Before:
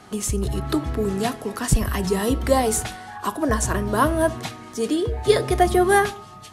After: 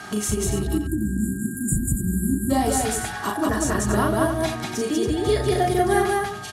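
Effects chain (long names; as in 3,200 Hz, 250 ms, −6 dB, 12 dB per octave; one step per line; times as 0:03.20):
time-frequency box erased 0:00.59–0:02.50, 370–6,900 Hz
notch comb filter 520 Hz
steady tone 1,600 Hz −47 dBFS
downward compressor 2 to 1, threshold −31 dBFS, peak gain reduction 11 dB
on a send: loudspeakers that aren't time-aligned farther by 13 metres −3 dB, 66 metres −1 dB, 97 metres −8 dB
on the sum: one half of a high-frequency compander encoder only
level +4 dB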